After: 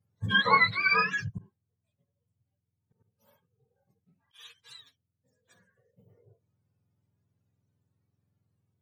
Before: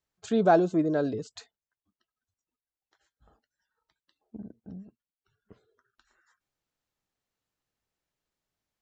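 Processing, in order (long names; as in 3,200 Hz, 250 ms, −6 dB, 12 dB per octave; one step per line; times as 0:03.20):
frequency axis turned over on the octave scale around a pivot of 850 Hz
harmonic and percussive parts rebalanced percussive −15 dB
0:01.38–0:04.59: volume swells 137 ms
level +8 dB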